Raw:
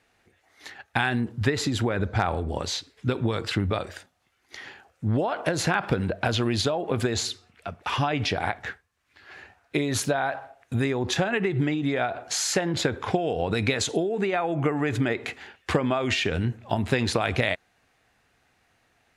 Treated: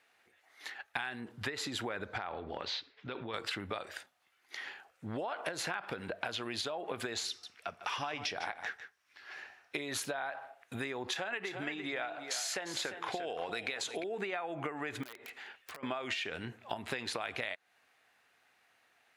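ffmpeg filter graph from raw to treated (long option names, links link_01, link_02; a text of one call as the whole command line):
ffmpeg -i in.wav -filter_complex "[0:a]asettb=1/sr,asplit=3[link_01][link_02][link_03];[link_01]atrim=end=2.184[link_04];[link_02]atrim=start=2.18:end=3.34,asetpts=PTS-STARTPTS,afade=type=in:duration=0.004:curve=qsin,afade=type=out:start_time=1.156:duration=0.004:curve=qsin,lowpass=frequency=4500:width=0.5412,lowpass=frequency=4500:width=1.3066,acompressor=threshold=-25dB:ratio=6:attack=3.2:release=140:knee=1:detection=peak[link_05];[link_03]atrim=start=3.336[link_06];[link_04][link_05]acrossfade=duration=0.004:curve1=hsin:curve2=qsin[link_07];[link_07][link_06]acrossfade=duration=0.004:curve1=qsin:curve2=hsin,asettb=1/sr,asplit=3[link_08][link_09][link_10];[link_08]atrim=end=7.284[link_11];[link_09]atrim=start=7.28:end=9.78,asetpts=PTS-STARTPTS,afade=type=in:duration=0.004:curve=qsin,afade=type=out:start_time=2.496:duration=0.004:curve=qsin,equalizer=frequency=5600:width=4.8:gain=9.5,aecho=1:1:151:0.211,atrim=end_sample=110250[link_12];[link_10]atrim=start=9.776[link_13];[link_11][link_12]acrossfade=duration=0.004:curve1=hsin:curve2=qsin[link_14];[link_14][link_13]acrossfade=duration=0.004:curve1=qsin:curve2=hsin,asettb=1/sr,asplit=3[link_15][link_16][link_17];[link_15]atrim=end=11.084[link_18];[link_16]atrim=start=11.08:end=14.04,asetpts=PTS-STARTPTS,afade=type=in:duration=0.004:curve=qsin,afade=type=out:start_time=2.956:duration=0.004:curve=qsin,lowshelf=frequency=220:gain=-8.5,aecho=1:1:349:0.282,atrim=end_sample=130536[link_19];[link_17]atrim=start=14.036[link_20];[link_18][link_19]acrossfade=duration=0.004:curve1=hsin:curve2=qsin[link_21];[link_21][link_20]acrossfade=duration=0.004:curve1=qsin:curve2=hsin,asettb=1/sr,asplit=3[link_22][link_23][link_24];[link_22]atrim=end=15.034[link_25];[link_23]atrim=start=15.03:end=15.83,asetpts=PTS-STARTPTS,afade=type=in:duration=0.004:curve=qsin,afade=type=out:start_time=0.796:duration=0.004:curve=qsin,acompressor=threshold=-41dB:ratio=6:attack=3.2:release=140:knee=1:detection=peak,aeval=exprs='(mod(53.1*val(0)+1,2)-1)/53.1':channel_layout=same[link_26];[link_24]atrim=start=15.826[link_27];[link_25][link_26]acrossfade=duration=0.004:curve1=hsin:curve2=qsin[link_28];[link_28][link_27]acrossfade=duration=0.004:curve1=qsin:curve2=hsin,highpass=frequency=980:poles=1,equalizer=frequency=6600:width=0.91:gain=-5,acompressor=threshold=-34dB:ratio=6" out.wav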